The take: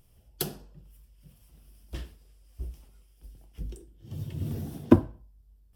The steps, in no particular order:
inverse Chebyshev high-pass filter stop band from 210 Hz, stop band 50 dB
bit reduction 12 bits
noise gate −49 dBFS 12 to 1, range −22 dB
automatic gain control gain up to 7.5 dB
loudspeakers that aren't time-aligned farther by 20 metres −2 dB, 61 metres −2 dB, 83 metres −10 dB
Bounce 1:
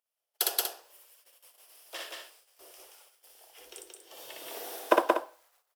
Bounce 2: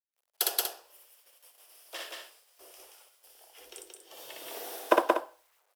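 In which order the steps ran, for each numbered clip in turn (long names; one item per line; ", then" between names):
bit reduction, then loudspeakers that aren't time-aligned, then noise gate, then inverse Chebyshev high-pass filter, then automatic gain control
loudspeakers that aren't time-aligned, then noise gate, then bit reduction, then inverse Chebyshev high-pass filter, then automatic gain control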